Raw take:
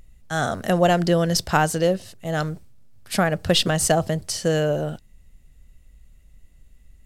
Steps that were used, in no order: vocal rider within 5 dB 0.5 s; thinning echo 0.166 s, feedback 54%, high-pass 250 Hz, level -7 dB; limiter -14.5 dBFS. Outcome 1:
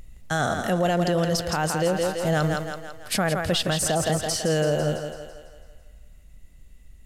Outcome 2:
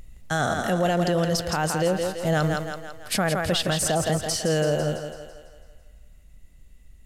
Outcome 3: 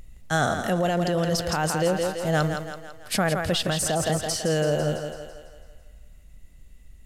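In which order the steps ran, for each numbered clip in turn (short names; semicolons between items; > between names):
thinning echo > vocal rider > limiter; vocal rider > thinning echo > limiter; thinning echo > limiter > vocal rider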